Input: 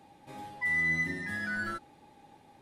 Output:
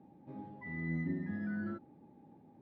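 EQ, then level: band-pass filter 210 Hz, Q 1.3; distance through air 100 m; +5.0 dB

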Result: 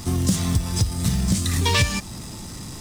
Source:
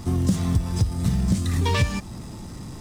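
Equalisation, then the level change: treble shelf 2 kHz +10.5 dB; 0.0 dB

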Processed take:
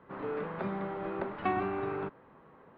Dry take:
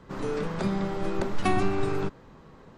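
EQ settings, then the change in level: Gaussian low-pass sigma 3.7 samples; high-pass 140 Hz 6 dB/octave; bass shelf 420 Hz -9 dB; 0.0 dB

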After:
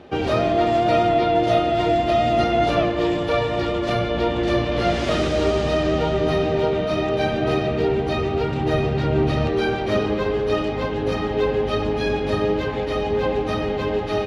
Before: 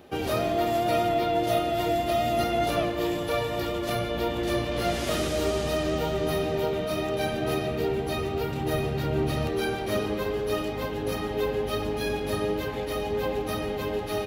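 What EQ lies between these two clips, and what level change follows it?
distance through air 120 m; +7.0 dB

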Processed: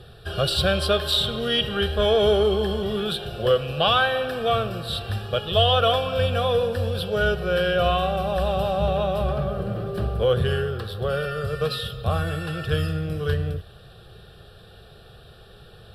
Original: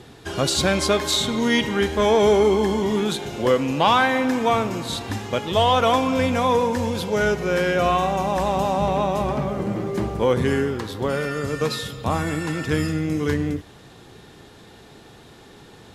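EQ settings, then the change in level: bass shelf 91 Hz +10.5 dB; dynamic bell 3 kHz, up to +6 dB, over -42 dBFS, Q 3.9; static phaser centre 1.4 kHz, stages 8; 0.0 dB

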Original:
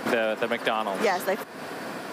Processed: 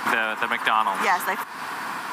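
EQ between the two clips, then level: resonant low shelf 750 Hz -8 dB, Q 3; dynamic bell 4.7 kHz, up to -6 dB, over -47 dBFS, Q 1.7; +5.0 dB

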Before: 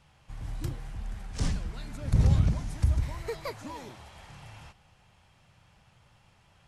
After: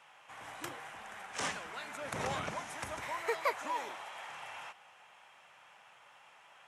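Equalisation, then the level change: high-pass 760 Hz 12 dB/octave; peaking EQ 4.5 kHz -10 dB 0.58 oct; treble shelf 6.3 kHz -10 dB; +9.0 dB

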